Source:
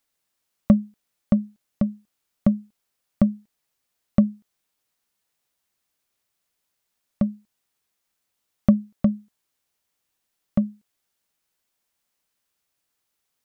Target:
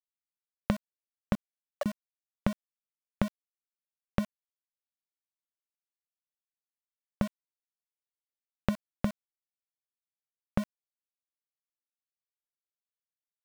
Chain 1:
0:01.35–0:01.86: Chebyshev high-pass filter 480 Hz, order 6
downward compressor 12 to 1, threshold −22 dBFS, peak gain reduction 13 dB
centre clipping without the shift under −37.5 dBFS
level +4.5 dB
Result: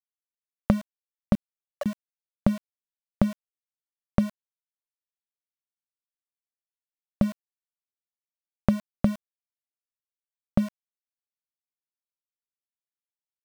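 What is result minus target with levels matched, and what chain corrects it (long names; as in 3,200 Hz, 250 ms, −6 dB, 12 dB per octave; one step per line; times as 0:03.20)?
downward compressor: peak gain reduction −8 dB
0:01.35–0:01.86: Chebyshev high-pass filter 480 Hz, order 6
downward compressor 12 to 1, threshold −30.5 dBFS, peak gain reduction 20.5 dB
centre clipping without the shift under −37.5 dBFS
level +4.5 dB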